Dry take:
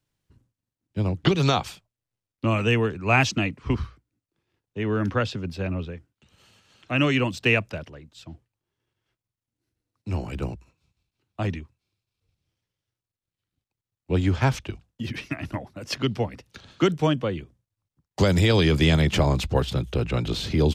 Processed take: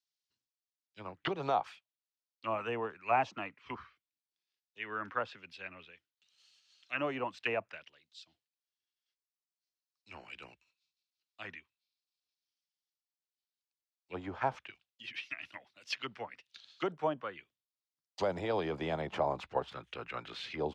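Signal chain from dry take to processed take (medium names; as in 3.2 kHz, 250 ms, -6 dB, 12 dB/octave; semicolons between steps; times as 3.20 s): auto-wah 770–4800 Hz, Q 2, down, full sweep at -17.5 dBFS; trim -3 dB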